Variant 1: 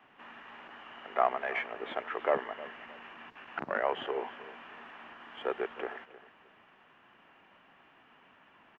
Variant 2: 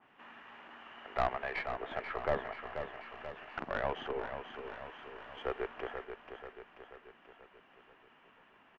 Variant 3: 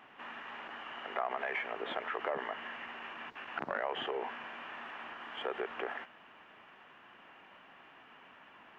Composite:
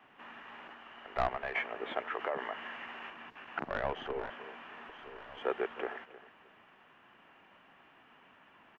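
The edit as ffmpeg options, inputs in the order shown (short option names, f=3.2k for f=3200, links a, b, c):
-filter_complex "[1:a]asplit=3[a][b][c];[0:a]asplit=5[d][e][f][g][h];[d]atrim=end=0.732[i];[a]atrim=start=0.728:end=1.552[j];[e]atrim=start=1.548:end=2.152[k];[2:a]atrim=start=2.148:end=3.102[l];[f]atrim=start=3.098:end=3.642[m];[b]atrim=start=3.638:end=4.302[n];[g]atrim=start=4.298:end=4.892[o];[c]atrim=start=4.888:end=5.422[p];[h]atrim=start=5.418[q];[i][j]acrossfade=d=0.004:c1=hsin:c2=hsin[r];[r][k]acrossfade=d=0.004:c1=hsin:c2=hsin[s];[s][l]acrossfade=d=0.004:c1=hsin:c2=hsin[t];[t][m]acrossfade=d=0.004:c1=hsin:c2=hsin[u];[u][n]acrossfade=d=0.004:c1=hsin:c2=hsin[v];[v][o]acrossfade=d=0.004:c1=hsin:c2=hsin[w];[w][p]acrossfade=d=0.004:c1=hsin:c2=hsin[x];[x][q]acrossfade=d=0.004:c1=hsin:c2=hsin"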